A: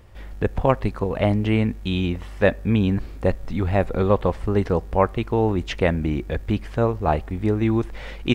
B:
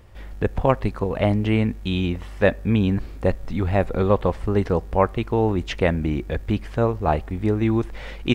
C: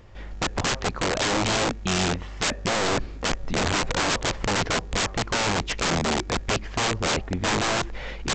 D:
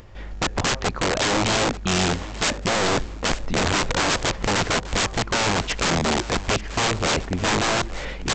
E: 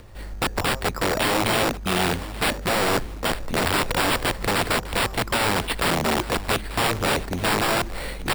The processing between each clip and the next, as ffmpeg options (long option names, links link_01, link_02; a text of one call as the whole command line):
ffmpeg -i in.wav -af anull out.wav
ffmpeg -i in.wav -af "equalizer=frequency=68:width=1.8:gain=-5,aresample=16000,aeval=exprs='(mod(10*val(0)+1,2)-1)/10':channel_layout=same,aresample=44100,volume=1.5dB" out.wav
ffmpeg -i in.wav -af "aecho=1:1:885|1770|2655:0.15|0.0554|0.0205,acompressor=mode=upward:threshold=-45dB:ratio=2.5,volume=2.5dB" out.wav
ffmpeg -i in.wav -filter_complex "[0:a]acrossover=split=330|1100|2200[link_01][link_02][link_03][link_04];[link_01]asoftclip=type=hard:threshold=-26dB[link_05];[link_05][link_02][link_03][link_04]amix=inputs=4:normalize=0,acrusher=samples=7:mix=1:aa=0.000001" out.wav